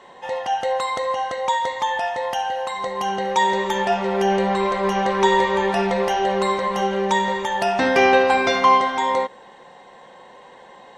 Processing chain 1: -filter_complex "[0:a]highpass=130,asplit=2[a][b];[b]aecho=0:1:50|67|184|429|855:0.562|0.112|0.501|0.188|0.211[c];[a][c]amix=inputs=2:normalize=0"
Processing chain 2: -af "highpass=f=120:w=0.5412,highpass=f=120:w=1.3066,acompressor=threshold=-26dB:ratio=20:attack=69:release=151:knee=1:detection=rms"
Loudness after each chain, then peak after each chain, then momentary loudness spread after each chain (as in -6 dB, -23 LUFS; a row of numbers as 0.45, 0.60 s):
-18.5, -27.5 LUFS; -2.0, -13.5 dBFS; 9, 18 LU